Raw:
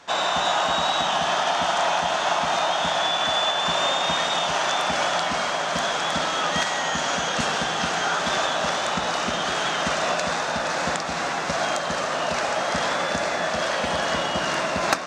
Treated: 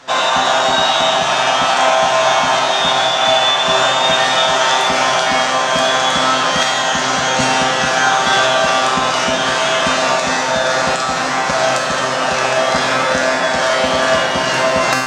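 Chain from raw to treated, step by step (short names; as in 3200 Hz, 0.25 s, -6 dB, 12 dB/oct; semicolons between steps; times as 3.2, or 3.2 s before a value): resonator 130 Hz, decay 0.88 s, harmonics all, mix 90%; maximiser +24 dB; gain -1 dB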